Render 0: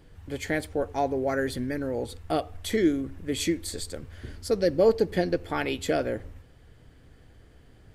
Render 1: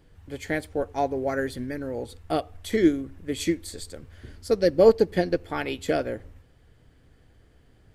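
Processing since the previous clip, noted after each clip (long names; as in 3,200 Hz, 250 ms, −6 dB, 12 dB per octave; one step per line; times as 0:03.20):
expander for the loud parts 1.5 to 1, over −33 dBFS
level +5 dB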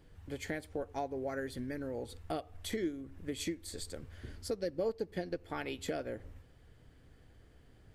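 downward compressor 3 to 1, threshold −34 dBFS, peak gain reduction 17 dB
level −3 dB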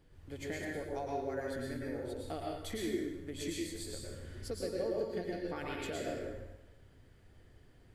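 dense smooth reverb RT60 0.94 s, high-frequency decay 0.9×, pre-delay 95 ms, DRR −3 dB
level −4.5 dB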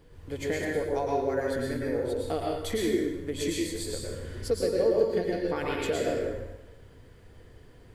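hollow resonant body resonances 470/1,000 Hz, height 8 dB
level +8 dB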